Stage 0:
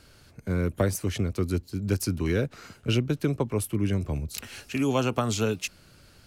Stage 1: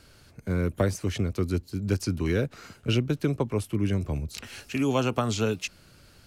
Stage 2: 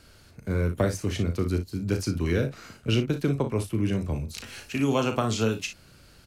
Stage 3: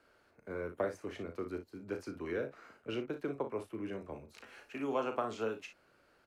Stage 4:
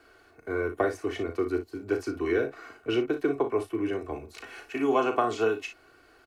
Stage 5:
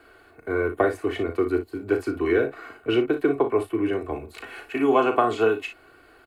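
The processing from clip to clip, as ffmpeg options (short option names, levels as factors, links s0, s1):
-filter_complex "[0:a]acrossover=split=7500[s0][s1];[s1]acompressor=threshold=0.00355:ratio=4:attack=1:release=60[s2];[s0][s2]amix=inputs=2:normalize=0"
-af "aecho=1:1:36|58:0.376|0.251"
-filter_complex "[0:a]acrossover=split=310 2100:gain=0.1 1 0.158[s0][s1][s2];[s0][s1][s2]amix=inputs=3:normalize=0,volume=0.473"
-af "aecho=1:1:2.7:0.72,volume=2.66"
-af "equalizer=f=5800:w=2.6:g=-13,volume=1.78"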